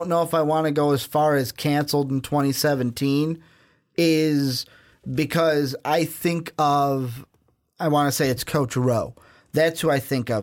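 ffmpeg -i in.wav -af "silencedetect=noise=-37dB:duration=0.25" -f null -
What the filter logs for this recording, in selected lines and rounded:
silence_start: 3.36
silence_end: 3.98 | silence_duration: 0.62
silence_start: 4.66
silence_end: 5.06 | silence_duration: 0.40
silence_start: 7.24
silence_end: 7.79 | silence_duration: 0.56
silence_start: 9.17
silence_end: 9.54 | silence_duration: 0.37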